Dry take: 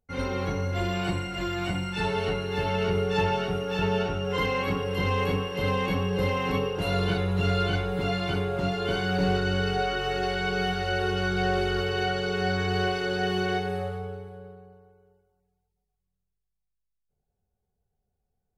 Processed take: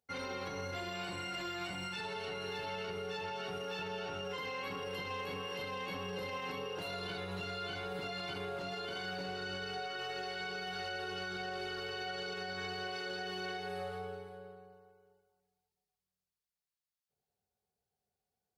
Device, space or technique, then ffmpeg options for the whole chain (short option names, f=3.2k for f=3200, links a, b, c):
broadcast voice chain: -af "highpass=83,lowshelf=f=340:g=-12,deesser=0.9,acompressor=threshold=-35dB:ratio=6,equalizer=f=4.5k:t=o:w=0.49:g=4.5,alimiter=level_in=7dB:limit=-24dB:level=0:latency=1:release=25,volume=-7dB,volume=-1dB"